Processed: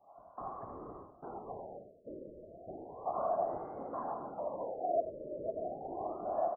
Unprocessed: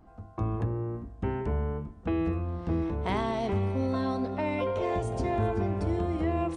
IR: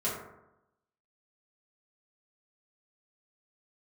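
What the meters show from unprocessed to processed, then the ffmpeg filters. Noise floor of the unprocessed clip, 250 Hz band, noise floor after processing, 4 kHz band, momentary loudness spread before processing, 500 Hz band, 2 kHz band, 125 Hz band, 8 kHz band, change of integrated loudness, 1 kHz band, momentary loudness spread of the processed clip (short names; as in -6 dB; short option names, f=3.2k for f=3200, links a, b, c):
-51 dBFS, -18.5 dB, -60 dBFS, under -35 dB, 5 LU, -6.0 dB, under -20 dB, -27.5 dB, n/a, -9.5 dB, -3.5 dB, 15 LU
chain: -filter_complex "[0:a]asplit=3[a][b][c];[a]bandpass=f=730:t=q:w=8,volume=0dB[d];[b]bandpass=f=1.09k:t=q:w=8,volume=-6dB[e];[c]bandpass=f=2.44k:t=q:w=8,volume=-9dB[f];[d][e][f]amix=inputs=3:normalize=0,aecho=1:1:77|154|231|308|385|462|539:0.398|0.219|0.12|0.0662|0.0364|0.02|0.011,asplit=2[g][h];[1:a]atrim=start_sample=2205[i];[h][i]afir=irnorm=-1:irlink=0,volume=-21dB[j];[g][j]amix=inputs=2:normalize=0,afftfilt=real='hypot(re,im)*cos(2*PI*random(0))':imag='hypot(re,im)*sin(2*PI*random(1))':win_size=512:overlap=0.75,afftfilt=real='re*lt(b*sr/1024,620*pow(2200/620,0.5+0.5*sin(2*PI*0.33*pts/sr)))':imag='im*lt(b*sr/1024,620*pow(2200/620,0.5+0.5*sin(2*PI*0.33*pts/sr)))':win_size=1024:overlap=0.75,volume=7.5dB"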